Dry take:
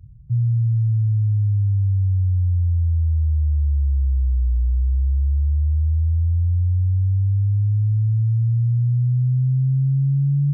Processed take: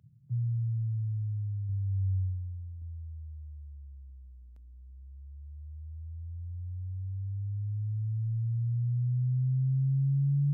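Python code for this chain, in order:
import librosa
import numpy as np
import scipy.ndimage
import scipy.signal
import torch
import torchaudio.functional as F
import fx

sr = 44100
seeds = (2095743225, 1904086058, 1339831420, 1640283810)

y = scipy.signal.sosfilt(scipy.signal.butter(4, 130.0, 'highpass', fs=sr, output='sos'), x)
y = fx.room_flutter(y, sr, wall_m=5.4, rt60_s=0.43, at=(1.66, 2.82))
y = y * 10.0 ** (-6.5 / 20.0)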